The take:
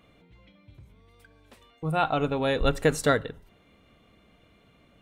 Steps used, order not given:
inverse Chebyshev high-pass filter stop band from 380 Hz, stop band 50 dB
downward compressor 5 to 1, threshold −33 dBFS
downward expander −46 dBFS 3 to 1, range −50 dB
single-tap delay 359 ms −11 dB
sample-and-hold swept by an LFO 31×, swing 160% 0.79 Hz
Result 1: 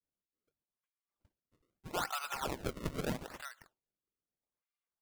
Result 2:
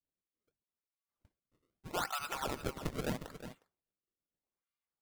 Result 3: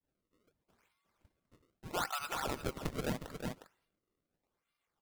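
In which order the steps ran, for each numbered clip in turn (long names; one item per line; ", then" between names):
inverse Chebyshev high-pass filter, then downward compressor, then downward expander, then single-tap delay, then sample-and-hold swept by an LFO
inverse Chebyshev high-pass filter, then downward compressor, then sample-and-hold swept by an LFO, then single-tap delay, then downward expander
downward expander, then inverse Chebyshev high-pass filter, then sample-and-hold swept by an LFO, then single-tap delay, then downward compressor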